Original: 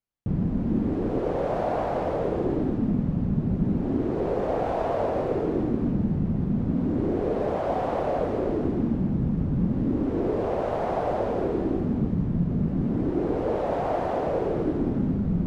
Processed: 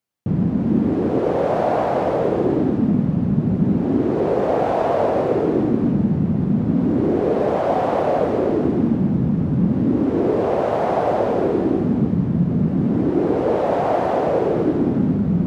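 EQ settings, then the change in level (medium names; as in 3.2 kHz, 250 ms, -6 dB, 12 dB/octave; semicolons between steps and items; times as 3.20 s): high-pass 110 Hz 12 dB/octave; +7.5 dB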